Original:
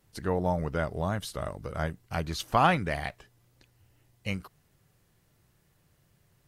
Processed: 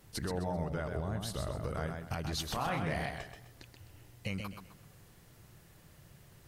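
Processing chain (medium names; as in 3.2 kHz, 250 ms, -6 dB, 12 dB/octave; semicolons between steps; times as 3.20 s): 0.97–1.52 s: bass shelf 340 Hz +7 dB; compression 6:1, threshold -38 dBFS, peak gain reduction 19.5 dB; peak limiter -34 dBFS, peak gain reduction 10 dB; 2.51–3.05 s: doubling 31 ms -5 dB; modulated delay 129 ms, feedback 32%, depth 78 cents, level -5.5 dB; trim +7.5 dB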